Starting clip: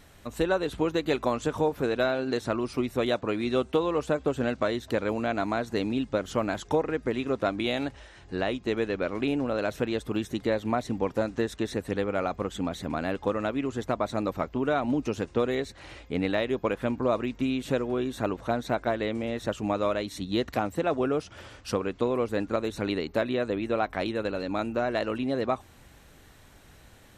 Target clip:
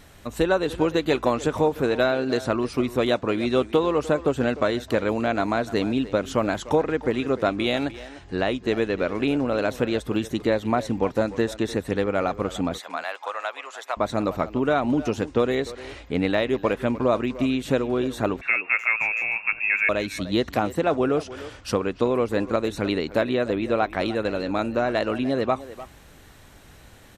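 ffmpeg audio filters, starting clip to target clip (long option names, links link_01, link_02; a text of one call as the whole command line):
ffmpeg -i in.wav -filter_complex "[0:a]asettb=1/sr,asplit=3[link_01][link_02][link_03];[link_01]atrim=end=12.784[link_04];[link_02]atrim=start=12.78:end=13.97,asetpts=PTS-STARTPTS,afade=type=in:duration=0.004:curve=qsin,afade=type=out:start_time=1.186:duration=0.004:curve=qsin,highpass=frequency=720:width=0.5412,highpass=frequency=720:width=1.3066[link_05];[link_03]atrim=start=13.966[link_06];[link_04][link_05]acrossfade=duration=0.004:curve1=hsin:curve2=qsin[link_07];[link_07][link_06]acrossfade=duration=0.004:curve1=qsin:curve2=hsin,asettb=1/sr,asplit=3[link_08][link_09][link_10];[link_08]atrim=end=18.414[link_11];[link_09]atrim=start=18.41:end=19.89,asetpts=PTS-STARTPTS,afade=type=in:duration=0.004:curve=qsin,afade=type=out:start_time=1.476:duration=0.004:curve=qsin,lowpass=frequency=2400:width_type=q:width=0.5098,lowpass=frequency=2400:width_type=q:width=0.6013,lowpass=frequency=2400:width_type=q:width=0.9,lowpass=frequency=2400:width_type=q:width=2.563,afreqshift=-2800[link_12];[link_10]atrim=start=19.886[link_13];[link_11][link_12]acrossfade=duration=0.004:curve1=hsin:curve2=qsin[link_14];[link_14][link_13]acrossfade=duration=0.004:curve1=qsin:curve2=hsin,asplit=2[link_15][link_16];[link_16]adelay=300,highpass=300,lowpass=3400,asoftclip=type=hard:threshold=-21dB,volume=-14dB[link_17];[link_15][link_17]amix=inputs=2:normalize=0,volume=4.5dB" out.wav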